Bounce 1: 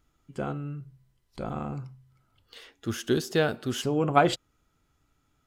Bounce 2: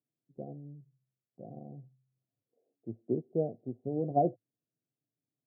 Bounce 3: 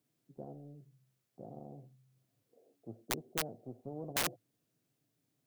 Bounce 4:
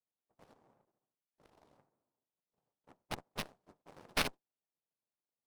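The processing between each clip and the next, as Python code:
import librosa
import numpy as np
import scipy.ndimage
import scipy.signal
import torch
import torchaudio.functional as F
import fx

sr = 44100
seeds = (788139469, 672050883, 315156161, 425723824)

y1 = scipy.signal.sosfilt(scipy.signal.cheby1(5, 1.0, [110.0, 720.0], 'bandpass', fs=sr, output='sos'), x)
y1 = fx.upward_expand(y1, sr, threshold_db=-47.0, expansion=1.5)
y1 = y1 * 10.0 ** (-3.5 / 20.0)
y2 = (np.mod(10.0 ** (21.5 / 20.0) * y1 + 1.0, 2.0) - 1.0) / 10.0 ** (21.5 / 20.0)
y2 = fx.spectral_comp(y2, sr, ratio=2.0)
y2 = y2 * 10.0 ** (5.0 / 20.0)
y3 = fx.noise_vocoder(y2, sr, seeds[0], bands=2)
y3 = fx.cheby_harmonics(y3, sr, harmonics=(3, 5, 7), levels_db=(-12, -31, -26), full_scale_db=-20.5)
y3 = fx.running_max(y3, sr, window=5)
y3 = y3 * 10.0 ** (7.0 / 20.0)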